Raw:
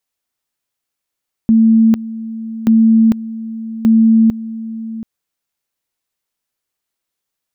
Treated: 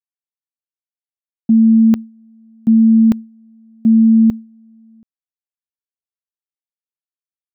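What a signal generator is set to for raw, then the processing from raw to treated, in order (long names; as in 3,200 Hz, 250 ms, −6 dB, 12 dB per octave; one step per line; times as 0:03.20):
tone at two levels in turn 224 Hz −6 dBFS, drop 16 dB, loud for 0.45 s, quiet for 0.73 s, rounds 3
downward expander −13 dBFS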